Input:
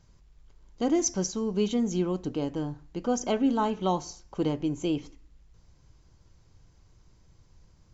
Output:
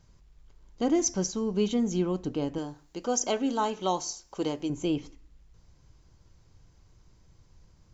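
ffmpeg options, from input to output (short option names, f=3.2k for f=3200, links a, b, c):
-filter_complex "[0:a]asettb=1/sr,asplit=3[a][b][c];[a]atrim=end=2.584[d];[b]atrim=start=2.58:end=4.7,asetpts=PTS-STARTPTS,afade=t=in:d=0.004:c=qsin,afade=t=out:st=2.116:d=0.004:c=qsin,bass=f=250:g=-10,treble=f=4k:g=9[e];[c]atrim=start=4.696[f];[d][e]acrossfade=d=0.004:c1=hsin:c2=qsin[g];[g][f]acrossfade=d=0.004:c1=qsin:c2=hsin"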